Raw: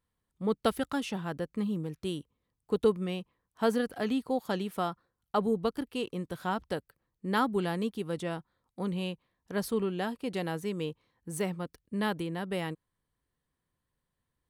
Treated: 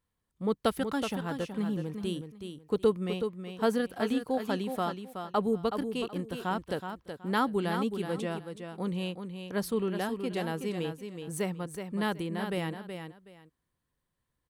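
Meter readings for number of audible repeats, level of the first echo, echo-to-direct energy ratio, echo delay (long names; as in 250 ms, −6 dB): 2, −7.5 dB, −7.5 dB, 373 ms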